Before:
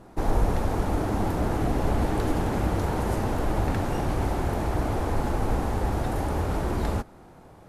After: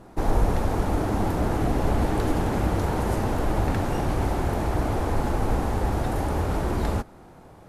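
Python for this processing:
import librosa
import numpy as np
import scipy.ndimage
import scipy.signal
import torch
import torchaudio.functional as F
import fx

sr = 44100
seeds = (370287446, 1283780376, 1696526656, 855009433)

y = F.gain(torch.from_numpy(x), 1.5).numpy()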